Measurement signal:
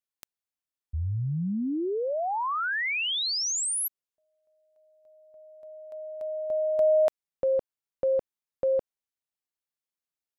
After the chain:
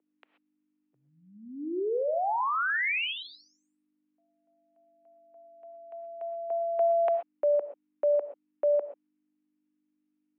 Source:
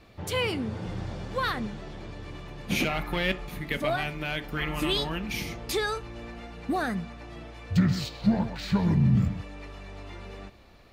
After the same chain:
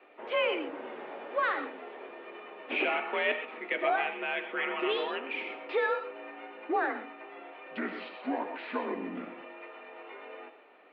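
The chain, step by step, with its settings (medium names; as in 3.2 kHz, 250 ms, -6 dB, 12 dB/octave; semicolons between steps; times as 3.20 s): hum 50 Hz, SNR 29 dB; gated-style reverb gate 150 ms rising, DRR 9 dB; mistuned SSB +53 Hz 300–2800 Hz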